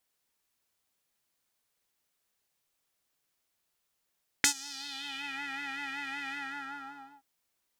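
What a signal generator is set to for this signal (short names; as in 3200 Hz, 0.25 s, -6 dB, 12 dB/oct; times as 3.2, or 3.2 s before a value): synth patch with vibrato C#4, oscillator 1 square, interval +19 st, oscillator 2 level -8.5 dB, noise -15.5 dB, filter bandpass, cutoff 910 Hz, Q 2.5, filter envelope 3 oct, filter decay 0.95 s, attack 1.4 ms, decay 0.09 s, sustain -22.5 dB, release 0.91 s, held 1.87 s, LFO 5.3 Hz, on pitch 59 cents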